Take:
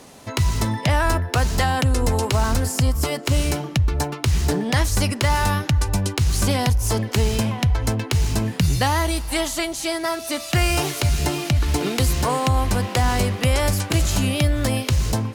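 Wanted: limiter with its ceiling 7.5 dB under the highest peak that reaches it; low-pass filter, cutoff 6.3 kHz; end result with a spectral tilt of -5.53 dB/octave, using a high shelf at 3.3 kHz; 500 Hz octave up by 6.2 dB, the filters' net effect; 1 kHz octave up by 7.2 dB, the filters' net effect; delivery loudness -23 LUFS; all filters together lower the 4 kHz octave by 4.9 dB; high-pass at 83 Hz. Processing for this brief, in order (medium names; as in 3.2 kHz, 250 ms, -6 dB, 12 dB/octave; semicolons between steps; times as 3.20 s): high-pass 83 Hz; low-pass 6.3 kHz; peaking EQ 500 Hz +5.5 dB; peaking EQ 1 kHz +7.5 dB; treble shelf 3.3 kHz -3.5 dB; peaking EQ 4 kHz -4 dB; trim -0.5 dB; peak limiter -12 dBFS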